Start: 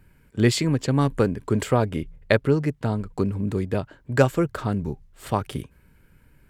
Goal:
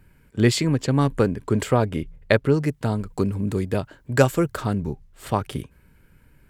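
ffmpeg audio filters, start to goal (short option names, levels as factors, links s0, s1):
-filter_complex "[0:a]asettb=1/sr,asplit=3[s0][s1][s2];[s0]atrim=end=2.544[s3];[s1]atrim=start=2.54:end=4.73,asetpts=PTS-STARTPTS,afade=t=in:d=0.004:c=qsin,afade=t=out:st=2.186:d=0.004:c=qsin,highshelf=f=5400:g=8[s4];[s2]atrim=start=4.726[s5];[s3][s4]acrossfade=d=0.004:c1=hsin:c2=qsin[s6];[s6][s5]acrossfade=d=0.004:c1=qsin:c2=hsin,volume=1.12"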